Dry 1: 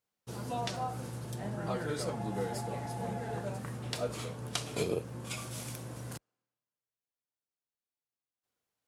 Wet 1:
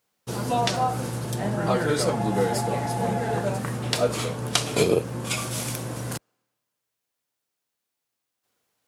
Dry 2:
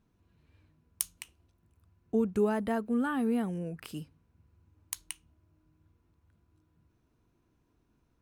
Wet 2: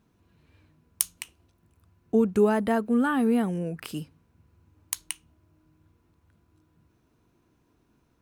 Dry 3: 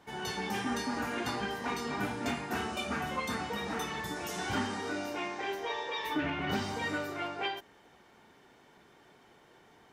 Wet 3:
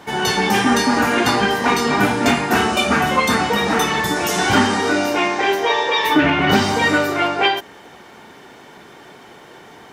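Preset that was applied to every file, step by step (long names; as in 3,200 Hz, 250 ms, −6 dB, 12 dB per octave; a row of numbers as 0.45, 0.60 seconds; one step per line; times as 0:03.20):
low-shelf EQ 69 Hz −9.5 dB
normalise the peak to −2 dBFS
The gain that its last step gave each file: +12.5, +7.0, +18.5 decibels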